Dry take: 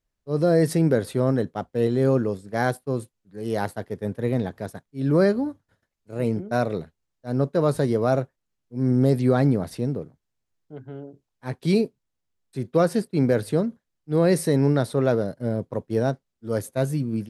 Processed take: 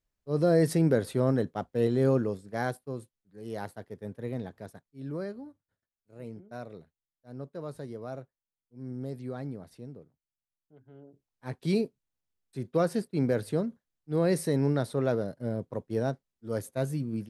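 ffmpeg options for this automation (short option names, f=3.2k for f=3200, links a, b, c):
-af "volume=7.5dB,afade=t=out:st=2.06:d=0.9:silence=0.446684,afade=t=out:st=4.74:d=0.5:silence=0.446684,afade=t=in:st=10.84:d=0.64:silence=0.266073"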